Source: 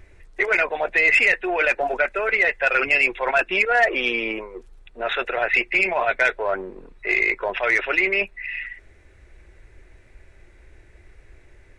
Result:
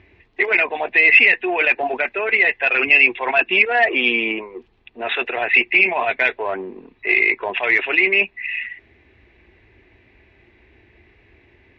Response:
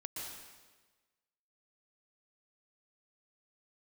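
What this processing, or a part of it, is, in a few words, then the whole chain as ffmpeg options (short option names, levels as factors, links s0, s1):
guitar cabinet: -af "highpass=100,equalizer=f=150:t=q:w=4:g=-7,equalizer=f=250:t=q:w=4:g=5,equalizer=f=550:t=q:w=4:g=-9,equalizer=f=1400:t=q:w=4:g=-10,equalizer=f=2700:t=q:w=4:g=4,lowpass=f=3800:w=0.5412,lowpass=f=3800:w=1.3066,volume=1.58"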